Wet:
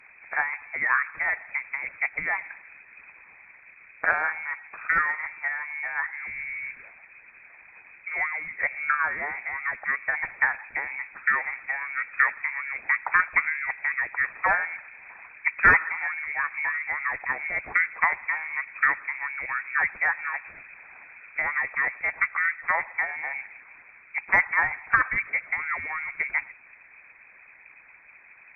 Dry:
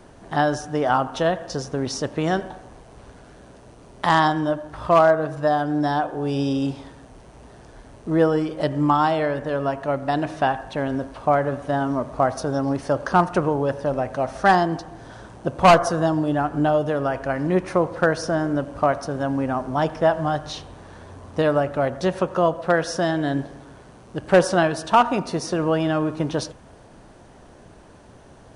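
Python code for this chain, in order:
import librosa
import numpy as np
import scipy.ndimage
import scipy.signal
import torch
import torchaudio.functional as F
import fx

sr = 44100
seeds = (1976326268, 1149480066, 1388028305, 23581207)

y = fx.freq_invert(x, sr, carrier_hz=2500)
y = fx.cheby_harmonics(y, sr, harmonics=(3,), levels_db=(-44,), full_scale_db=-2.5)
y = fx.hpss(y, sr, part='harmonic', gain_db=-13)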